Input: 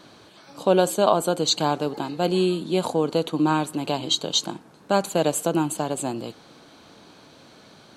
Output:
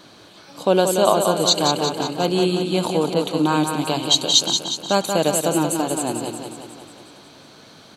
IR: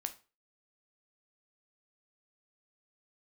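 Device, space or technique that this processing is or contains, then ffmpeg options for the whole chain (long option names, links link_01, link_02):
presence and air boost: -filter_complex "[0:a]equalizer=frequency=4200:width_type=o:width=1.8:gain=2.5,highshelf=frequency=11000:gain=5.5,aecho=1:1:181|362|543|724|905|1086|1267|1448:0.501|0.296|0.174|0.103|0.0607|0.0358|0.0211|0.0125,asettb=1/sr,asplit=3[link_01][link_02][link_03];[link_01]atrim=end=3.144[link_04];[link_02]atrim=start=3.14:end=5.02,asetpts=PTS-STARTPTS,afade=type=in:duration=0.004:curve=qsin,afade=type=out:start_time=1.876:duration=0.004:curve=qsin,adynamicequalizer=threshold=0.0398:dfrequency=3300:dqfactor=0.7:tfrequency=3300:tqfactor=0.7:attack=5:release=100:ratio=0.375:range=2:mode=boostabove:tftype=highshelf[link_05];[link_03]atrim=start=5.016[link_06];[link_04][link_05]acrossfade=duration=0.004:curve1=hsin:curve2=qsin[link_07];[link_07][link_06]acrossfade=duration=0.004:curve1=qsin:curve2=hsin,volume=1.5dB"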